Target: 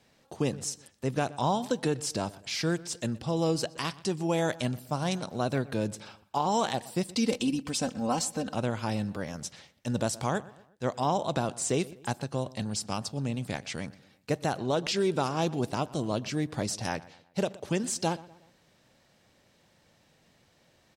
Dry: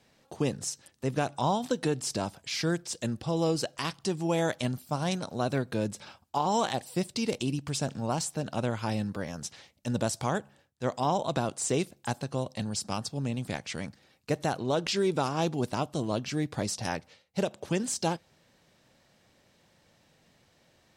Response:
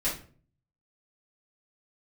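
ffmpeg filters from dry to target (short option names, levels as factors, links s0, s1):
-filter_complex "[0:a]asettb=1/sr,asplit=3[s0][s1][s2];[s0]atrim=end=7.054[s3];[s1]atrim=start=7.05:end=8.55,asetpts=PTS-STARTPTS,afade=t=in:d=0.004:c=qsin,afade=t=out:st=1.496:d=0.004:c=qsin,aecho=1:1:3.9:0.76,atrim=end_sample=66150[s4];[s2]atrim=start=8.546[s5];[s3][s4]acrossfade=d=0.004:c1=hsin:c2=qsin[s6];[s6][s5]acrossfade=d=0.004:c1=qsin:c2=hsin,asplit=2[s7][s8];[s8]adelay=122,lowpass=f=3300:p=1,volume=0.106,asplit=2[s9][s10];[s10]adelay=122,lowpass=f=3300:p=1,volume=0.44,asplit=2[s11][s12];[s12]adelay=122,lowpass=f=3300:p=1,volume=0.44[s13];[s7][s9][s11][s13]amix=inputs=4:normalize=0"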